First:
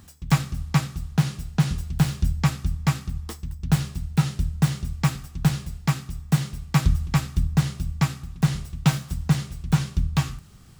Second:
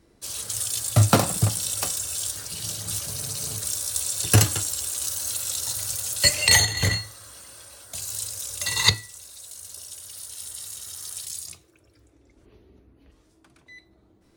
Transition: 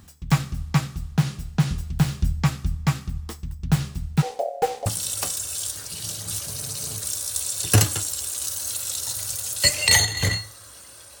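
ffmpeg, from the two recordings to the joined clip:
-filter_complex "[0:a]asettb=1/sr,asplit=3[s0][s1][s2];[s0]atrim=end=4.224[s3];[s1]atrim=start=4.22:end=4.86,asetpts=PTS-STARTPTS,afade=t=in:d=0.004:c=qsin,afade=t=out:st=0.636:d=0.004:c=qsin,aeval=exprs='val(0)*sin(2*PI*630*n/s)':c=same[s4];[s2]atrim=start=4.856[s5];[s3][s4]acrossfade=d=0.004:c1=hsin:c2=qsin[s6];[s6][s5]acrossfade=d=0.004:c1=qsin:c2=hsin,apad=whole_dur=11.2,atrim=end=11.2,atrim=end=4.862[s7];[1:a]atrim=start=1.458:end=7.8[s8];[s7][s8]acrossfade=d=0.004:c1=hsin:c2=hsin"

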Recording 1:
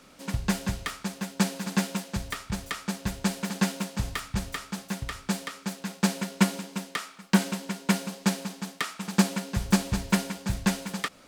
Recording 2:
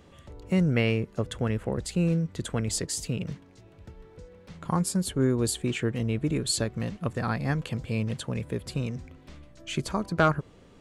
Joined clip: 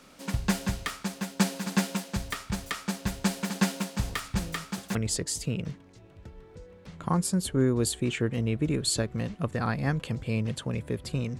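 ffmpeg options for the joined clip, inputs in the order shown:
-filter_complex "[1:a]asplit=2[s0][s1];[0:a]apad=whole_dur=11.39,atrim=end=11.39,atrim=end=4.952[s2];[s1]atrim=start=2.568:end=9.01[s3];[s0]atrim=start=1.71:end=2.57,asetpts=PTS-STARTPTS,volume=0.141,afade=t=in:d=0.004:c=hsin,afade=t=out:st=0.856:d=0.004:c=hsin,adelay=180369S[s4];[s2][s3]acrossfade=d=0.004:c1=hsin:c2=hsin[s5];[s5][s4]amix=inputs=2:normalize=0"

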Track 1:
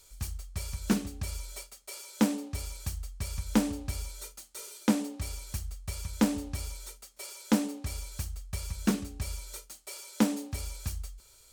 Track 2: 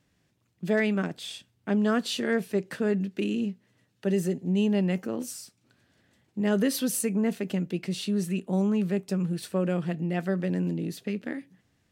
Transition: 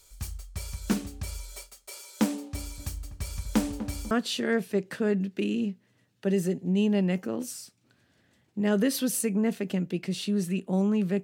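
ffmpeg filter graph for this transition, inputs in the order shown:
-filter_complex "[0:a]asettb=1/sr,asplit=3[s0][s1][s2];[s0]atrim=end=2.304[s3];[s1]atrim=start=2.3:end=4.11,asetpts=PTS-STARTPTS,afade=t=in:d=0.004:c=qsin,afade=t=out:st=1.806:d=0.004:c=qsin,asplit=2[s4][s5];[s5]adelay=247,lowpass=f=1000:p=1,volume=0.299,asplit=2[s6][s7];[s7]adelay=247,lowpass=f=1000:p=1,volume=0.47,asplit=2[s8][s9];[s9]adelay=247,lowpass=f=1000:p=1,volume=0.47,asplit=2[s10][s11];[s11]adelay=247,lowpass=f=1000:p=1,volume=0.47,asplit=2[s12][s13];[s13]adelay=247,lowpass=f=1000:p=1,volume=0.47[s14];[s4][s6][s8][s10][s12][s14]amix=inputs=6:normalize=0,atrim=end_sample=79821[s15];[s2]atrim=start=4.106[s16];[s3][s15]acrossfade=d=0.004:c1=hsin:c2=qsin[s17];[s17][s16]acrossfade=d=0.004:c1=qsin:c2=hsin,apad=whole_dur=11.23,atrim=end=11.23,atrim=end=4.112[s18];[1:a]atrim=start=1.908:end=9.03[s19];[s18][s19]acrossfade=d=0.004:c1=hsin:c2=hsin"

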